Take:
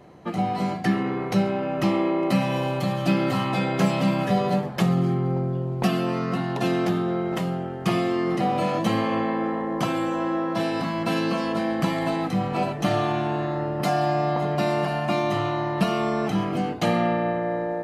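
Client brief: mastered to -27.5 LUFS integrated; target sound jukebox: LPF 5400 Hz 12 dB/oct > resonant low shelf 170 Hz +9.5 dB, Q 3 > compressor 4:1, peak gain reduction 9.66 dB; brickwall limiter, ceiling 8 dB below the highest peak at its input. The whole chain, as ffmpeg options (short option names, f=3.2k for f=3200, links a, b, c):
-af "alimiter=limit=-16.5dB:level=0:latency=1,lowpass=5.4k,lowshelf=f=170:t=q:w=3:g=9.5,acompressor=threshold=-21dB:ratio=4,volume=-2dB"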